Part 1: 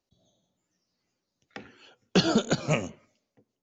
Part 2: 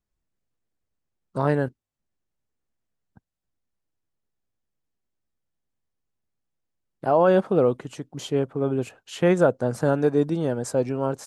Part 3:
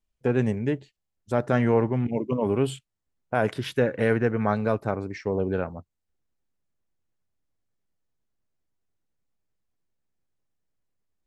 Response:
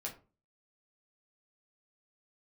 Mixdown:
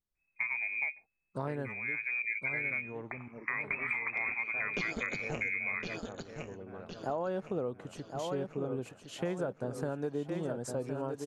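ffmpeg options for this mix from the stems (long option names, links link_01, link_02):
-filter_complex "[0:a]tremolo=f=170:d=0.824,adelay=1550,volume=2.5dB,asplit=2[link_01][link_02];[link_02]volume=-11dB[link_03];[1:a]volume=-9dB,asplit=3[link_04][link_05][link_06];[link_05]volume=-9dB[link_07];[2:a]bass=frequency=250:gain=-2,treble=frequency=4000:gain=-6,adelay=150,volume=-2dB,asplit=2[link_08][link_09];[link_09]volume=-18.5dB[link_10];[link_06]apad=whole_len=503261[link_11];[link_08][link_11]sidechaincompress=threshold=-47dB:ratio=8:attack=5.6:release=450[link_12];[link_01][link_12]amix=inputs=2:normalize=0,lowpass=frequency=2200:width_type=q:width=0.5098,lowpass=frequency=2200:width_type=q:width=0.6013,lowpass=frequency=2200:width_type=q:width=0.9,lowpass=frequency=2200:width_type=q:width=2.563,afreqshift=-2600,alimiter=limit=-18dB:level=0:latency=1:release=427,volume=0dB[link_13];[link_03][link_07][link_10]amix=inputs=3:normalize=0,aecho=0:1:1062|2124|3186|4248|5310|6372|7434:1|0.47|0.221|0.104|0.0488|0.0229|0.0108[link_14];[link_04][link_13][link_14]amix=inputs=3:normalize=0,acompressor=threshold=-31dB:ratio=6"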